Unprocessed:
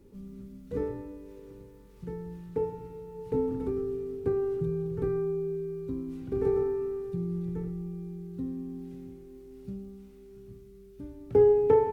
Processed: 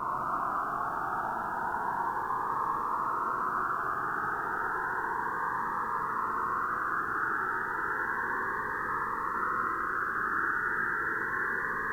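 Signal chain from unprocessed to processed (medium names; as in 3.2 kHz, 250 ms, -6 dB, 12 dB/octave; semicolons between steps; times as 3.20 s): bass shelf 370 Hz -8.5 dB; in parallel at -3 dB: compressor with a negative ratio -37 dBFS; on the sum: painted sound rise, 9.32–10.70 s, 390–1900 Hz -33 dBFS; whisper effect; Paulstretch 39×, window 1.00 s, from 10.16 s; reverberation, pre-delay 23 ms, DRR -2 dB; Shepard-style phaser rising 0.32 Hz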